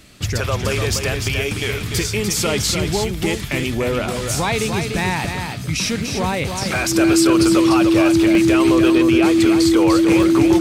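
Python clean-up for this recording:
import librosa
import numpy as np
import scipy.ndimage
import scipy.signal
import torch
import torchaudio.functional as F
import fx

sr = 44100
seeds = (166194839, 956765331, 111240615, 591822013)

y = fx.notch(x, sr, hz=330.0, q=30.0)
y = fx.fix_interpolate(y, sr, at_s=(8.35, 10.23), length_ms=2.0)
y = fx.fix_echo_inverse(y, sr, delay_ms=295, level_db=-6.0)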